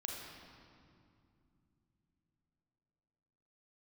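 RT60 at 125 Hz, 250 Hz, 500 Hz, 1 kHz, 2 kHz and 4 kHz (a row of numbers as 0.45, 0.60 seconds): 4.6, 4.2, 2.8, 2.4, 2.0, 1.7 seconds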